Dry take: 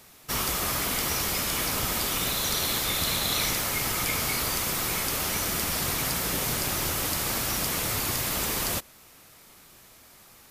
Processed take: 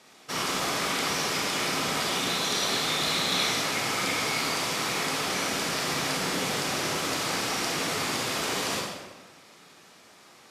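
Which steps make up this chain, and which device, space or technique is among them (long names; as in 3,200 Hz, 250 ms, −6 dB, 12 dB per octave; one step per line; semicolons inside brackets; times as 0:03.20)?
supermarket ceiling speaker (band-pass filter 210–6,600 Hz; convolution reverb RT60 1.2 s, pre-delay 27 ms, DRR −1.5 dB)
level −1 dB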